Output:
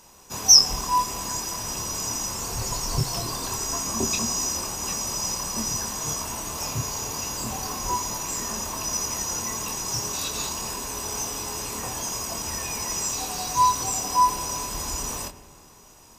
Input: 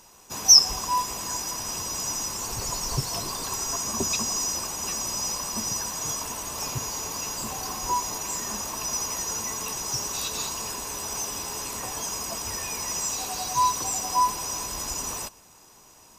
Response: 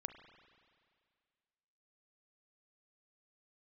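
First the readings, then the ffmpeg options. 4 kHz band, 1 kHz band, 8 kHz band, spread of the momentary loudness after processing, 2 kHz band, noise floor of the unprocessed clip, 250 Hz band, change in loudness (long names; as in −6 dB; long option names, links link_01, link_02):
+0.5 dB, +2.5 dB, +1.0 dB, 8 LU, +1.0 dB, −53 dBFS, +4.0 dB, +1.0 dB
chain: -filter_complex "[0:a]asplit=2[link_01][link_02];[1:a]atrim=start_sample=2205,lowshelf=frequency=420:gain=10,adelay=26[link_03];[link_02][link_03]afir=irnorm=-1:irlink=0,volume=-3dB[link_04];[link_01][link_04]amix=inputs=2:normalize=0"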